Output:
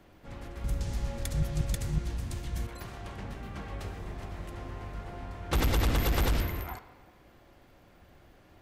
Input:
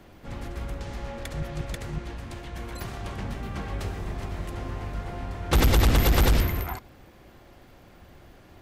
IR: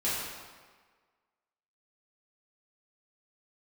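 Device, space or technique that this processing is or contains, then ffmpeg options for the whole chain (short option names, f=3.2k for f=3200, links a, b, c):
filtered reverb send: -filter_complex "[0:a]asplit=2[a][b];[b]highpass=320,lowpass=3.7k[c];[1:a]atrim=start_sample=2205[d];[c][d]afir=irnorm=-1:irlink=0,volume=-17.5dB[e];[a][e]amix=inputs=2:normalize=0,asettb=1/sr,asplit=3[f][g][h];[f]atrim=end=0.644[i];[g]atrim=start=0.64:end=2.67,asetpts=PTS-STARTPTS,afade=t=in:d=0.004:c=qsin,afade=t=out:st=2.026:d=0.004:c=qsin,bass=f=250:g=11,treble=f=4k:g=13[j];[h]atrim=start=2.666[k];[i][j]acrossfade=d=0.004:c1=hsin:c2=qsin[l];[l][k]acrossfade=d=0.004:c1=qsin:c2=hsin,volume=-7dB"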